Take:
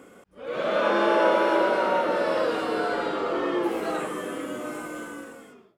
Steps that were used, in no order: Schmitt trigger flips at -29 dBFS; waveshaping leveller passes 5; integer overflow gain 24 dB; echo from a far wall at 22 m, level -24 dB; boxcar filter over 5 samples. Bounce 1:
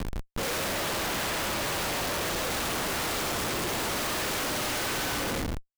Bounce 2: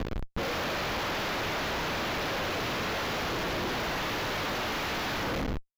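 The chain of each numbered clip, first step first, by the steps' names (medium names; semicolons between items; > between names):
boxcar filter > waveshaping leveller > integer overflow > echo from a far wall > Schmitt trigger; waveshaping leveller > echo from a far wall > integer overflow > Schmitt trigger > boxcar filter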